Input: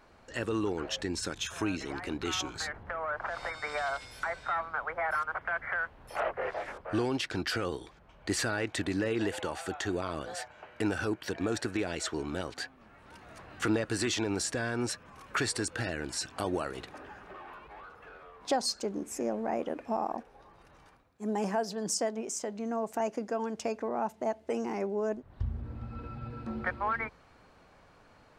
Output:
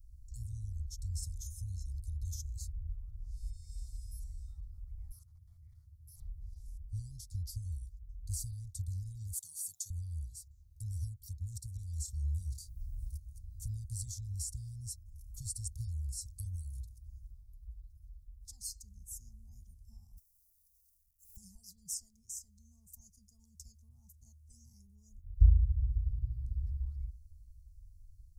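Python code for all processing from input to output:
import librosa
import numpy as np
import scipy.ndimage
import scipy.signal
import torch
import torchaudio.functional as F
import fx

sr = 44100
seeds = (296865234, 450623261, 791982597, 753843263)

y = fx.chain(x, sr, fx.highpass(hz=83.0, slope=24),
    fx.doppler_dist(depth_ms=0.18), at=(5.11, 6.22))
y = fx.chain(y, sr, fx.highpass(hz=360.0, slope=12),
    fx.high_shelf(hz=3700.0, db=11.5),
    fx.comb(ms=7.1, depth=0.78), at=(9.33, 9.9))
y = fx.chain(y, sr, fx.doubler(ms=27.0, db=-8.5),
    fx.env_flatten(amount_pct=50), at=(11.93, 13.18))
y = fx.chain(y, sr, fx.brickwall_highpass(low_hz=260.0),
    fx.quant_companded(bits=6), at=(20.17, 21.37))
y = scipy.signal.sosfilt(scipy.signal.cheby2(4, 70, [290.0, 2900.0], 'bandstop', fs=sr, output='sos'), y)
y = fx.high_shelf_res(y, sr, hz=6900.0, db=-10.0, q=1.5)
y = y * 10.0 ** (15.5 / 20.0)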